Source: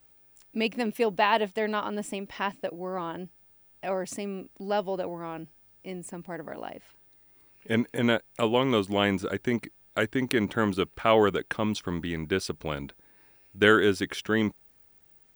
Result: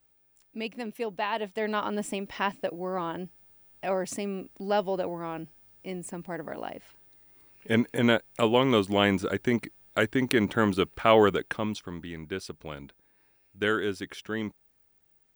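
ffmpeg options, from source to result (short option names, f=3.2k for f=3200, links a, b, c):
-af "volume=1.5dB,afade=t=in:st=1.35:d=0.54:silence=0.375837,afade=t=out:st=11.27:d=0.62:silence=0.375837"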